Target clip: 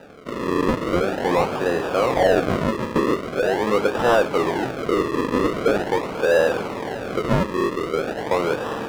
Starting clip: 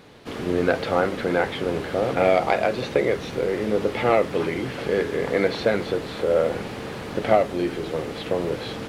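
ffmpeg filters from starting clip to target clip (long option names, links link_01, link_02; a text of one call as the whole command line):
ffmpeg -i in.wav -filter_complex "[0:a]acrusher=samples=40:mix=1:aa=0.000001:lfo=1:lforange=40:lforate=0.43,asplit=2[link_01][link_02];[link_02]highpass=frequency=720:poles=1,volume=17dB,asoftclip=type=tanh:threshold=-5dB[link_03];[link_01][link_03]amix=inputs=2:normalize=0,lowpass=frequency=1200:poles=1,volume=-6dB" out.wav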